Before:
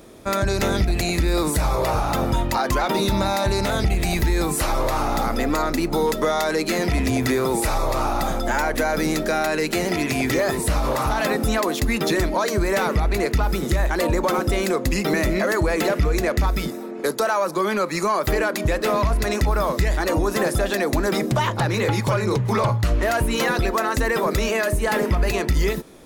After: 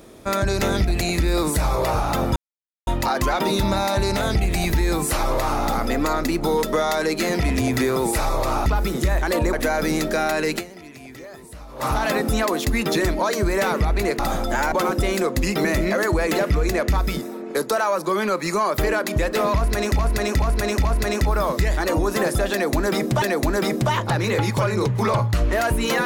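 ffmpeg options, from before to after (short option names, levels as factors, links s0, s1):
-filter_complex "[0:a]asplit=12[s0][s1][s2][s3][s4][s5][s6][s7][s8][s9][s10][s11];[s0]atrim=end=2.36,asetpts=PTS-STARTPTS,afade=t=out:st=2.356:d=0.004:c=hsin,apad=pad_dur=0.51[s12];[s1]atrim=start=2.36:end=8.152,asetpts=PTS-STARTPTS,afade=t=in:d=0.004:c=hsin[s13];[s2]atrim=start=13.338:end=14.212[s14];[s3]atrim=start=8.678:end=9.99,asetpts=PTS-STARTPTS,afade=t=out:st=1.052:d=0.26:c=exp:silence=0.11885[s15];[s4]atrim=start=9.99:end=10.72,asetpts=PTS-STARTPTS,volume=0.119[s16];[s5]atrim=start=10.72:end=13.342,asetpts=PTS-STARTPTS,afade=t=in:d=0.26:c=exp:silence=0.11885[s17];[s6]atrim=start=8.148:end=8.682[s18];[s7]atrim=start=14.208:end=19.482[s19];[s8]atrim=start=19.048:end=19.482[s20];[s9]atrim=start=19.048:end=19.482[s21];[s10]atrim=start=19.048:end=21.422[s22];[s11]atrim=start=20.718[s23];[s12][s13]concat=n=2:v=0:a=1[s24];[s24][s14]acrossfade=d=0.004:c1=hsin:c2=hsin[s25];[s15][s16][s17]concat=n=3:v=0:a=1[s26];[s25][s26]acrossfade=d=0.004:c1=hsin:c2=hsin[s27];[s27][s18]acrossfade=d=0.004:c1=hsin:c2=hsin[s28];[s28][s19]acrossfade=d=0.004:c1=hsin:c2=hsin[s29];[s29][s20]acrossfade=d=0.004:c1=hsin:c2=hsin[s30];[s30][s21]acrossfade=d=0.004:c1=hsin:c2=hsin[s31];[s31][s22]acrossfade=d=0.004:c1=hsin:c2=hsin[s32];[s32][s23]acrossfade=d=0.004:c1=hsin:c2=hsin"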